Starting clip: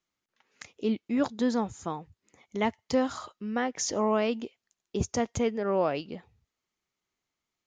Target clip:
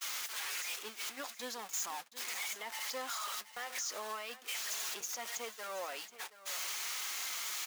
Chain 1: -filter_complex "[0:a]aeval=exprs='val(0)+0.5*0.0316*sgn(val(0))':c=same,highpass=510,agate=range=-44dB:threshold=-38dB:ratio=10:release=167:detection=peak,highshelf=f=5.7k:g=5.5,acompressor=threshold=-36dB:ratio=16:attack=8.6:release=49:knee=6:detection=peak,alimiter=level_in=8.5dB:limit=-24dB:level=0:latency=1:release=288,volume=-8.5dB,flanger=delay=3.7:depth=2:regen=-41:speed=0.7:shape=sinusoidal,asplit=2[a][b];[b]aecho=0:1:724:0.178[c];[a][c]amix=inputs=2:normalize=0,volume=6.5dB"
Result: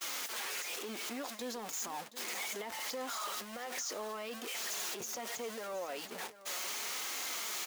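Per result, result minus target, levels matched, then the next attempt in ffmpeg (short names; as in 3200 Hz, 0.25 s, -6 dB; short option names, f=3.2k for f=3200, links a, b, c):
compressor: peak gain reduction +13.5 dB; 500 Hz band +4.5 dB
-filter_complex "[0:a]aeval=exprs='val(0)+0.5*0.0316*sgn(val(0))':c=same,highpass=510,agate=range=-44dB:threshold=-38dB:ratio=10:release=167:detection=peak,highshelf=f=5.7k:g=5.5,alimiter=level_in=8.5dB:limit=-24dB:level=0:latency=1:release=288,volume=-8.5dB,flanger=delay=3.7:depth=2:regen=-41:speed=0.7:shape=sinusoidal,asplit=2[a][b];[b]aecho=0:1:724:0.178[c];[a][c]amix=inputs=2:normalize=0,volume=6.5dB"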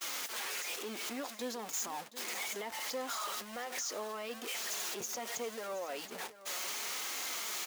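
500 Hz band +5.0 dB
-filter_complex "[0:a]aeval=exprs='val(0)+0.5*0.0316*sgn(val(0))':c=same,highpass=1k,agate=range=-44dB:threshold=-38dB:ratio=10:release=167:detection=peak,highshelf=f=5.7k:g=5.5,alimiter=level_in=8.5dB:limit=-24dB:level=0:latency=1:release=288,volume=-8.5dB,flanger=delay=3.7:depth=2:regen=-41:speed=0.7:shape=sinusoidal,asplit=2[a][b];[b]aecho=0:1:724:0.178[c];[a][c]amix=inputs=2:normalize=0,volume=6.5dB"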